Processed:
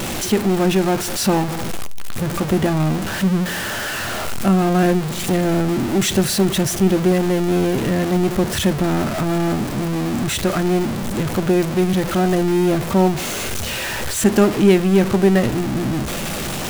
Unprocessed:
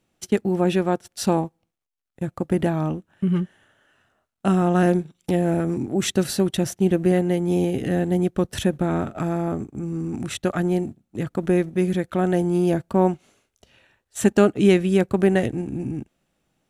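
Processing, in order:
converter with a step at zero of −19 dBFS
on a send: convolution reverb RT60 0.30 s, pre-delay 5 ms, DRR 14.5 dB

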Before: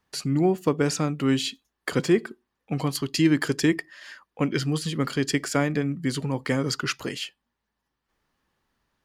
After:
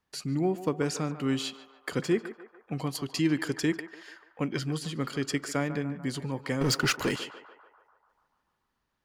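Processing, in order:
0:06.61–0:07.16: leveller curve on the samples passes 3
on a send: feedback echo with a band-pass in the loop 146 ms, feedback 69%, band-pass 930 Hz, level −10.5 dB
on the sum: level −6 dB

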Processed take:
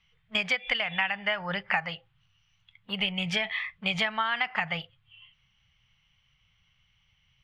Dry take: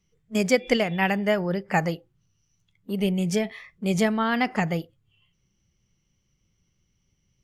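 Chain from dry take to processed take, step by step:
drawn EQ curve 130 Hz 0 dB, 320 Hz −19 dB, 820 Hz +7 dB, 3,200 Hz +14 dB, 6,200 Hz −10 dB, 12,000 Hz −17 dB
downward compressor 10 to 1, threshold −24 dBFS, peak gain reduction 15 dB

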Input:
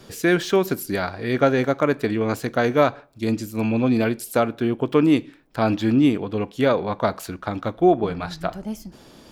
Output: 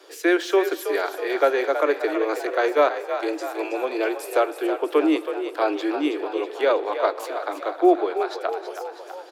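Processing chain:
Butterworth high-pass 310 Hz 96 dB per octave
high-shelf EQ 4,900 Hz −6 dB
echo with shifted repeats 323 ms, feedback 58%, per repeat +46 Hz, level −9.5 dB
convolution reverb RT60 4.7 s, pre-delay 63 ms, DRR 19 dB

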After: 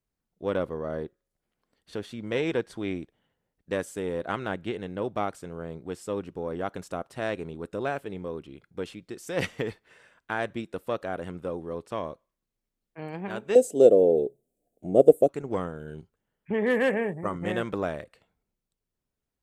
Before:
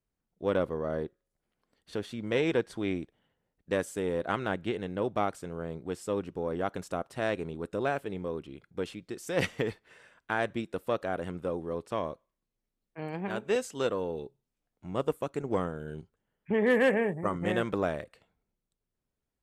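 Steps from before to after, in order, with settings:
0:13.55–0:15.29: drawn EQ curve 100 Hz 0 dB, 420 Hz +15 dB, 700 Hz +14 dB, 1,000 Hz −17 dB, 3,700 Hz −5 dB, 5,200 Hz −5 dB, 8,200 Hz +8 dB

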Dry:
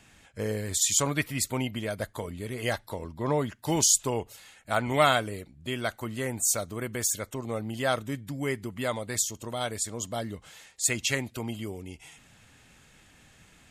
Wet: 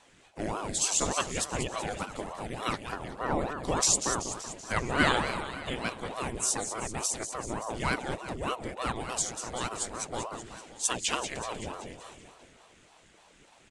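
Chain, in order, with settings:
downsampling to 22,050 Hz
on a send: repeating echo 191 ms, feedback 59%, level −9 dB
on the sum: ring modulator whose carrier an LFO sweeps 500 Hz, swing 80%, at 3.4 Hz

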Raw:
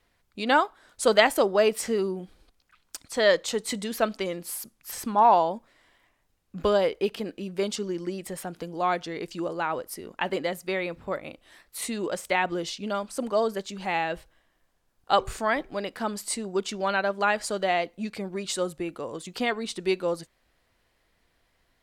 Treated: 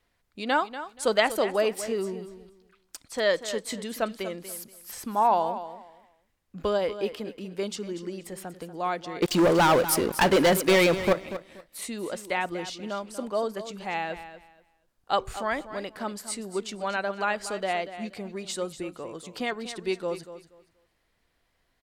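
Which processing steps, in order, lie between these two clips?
0:09.22–0:11.13: leveller curve on the samples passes 5
repeating echo 239 ms, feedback 22%, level −12.5 dB
level −3.5 dB

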